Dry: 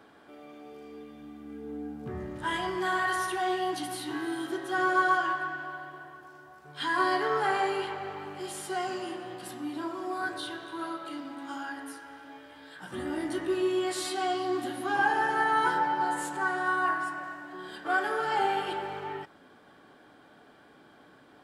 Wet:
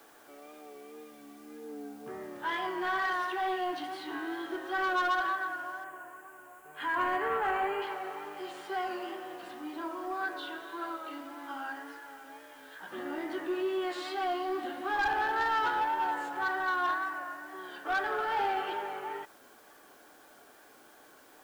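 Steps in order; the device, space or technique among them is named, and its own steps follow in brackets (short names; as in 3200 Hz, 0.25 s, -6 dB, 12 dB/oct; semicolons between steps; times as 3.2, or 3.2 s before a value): tape answering machine (BPF 370–3100 Hz; soft clip -24 dBFS, distortion -14 dB; wow and flutter; white noise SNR 28 dB); 5.84–7.82 band shelf 4500 Hz -12 dB 1 oct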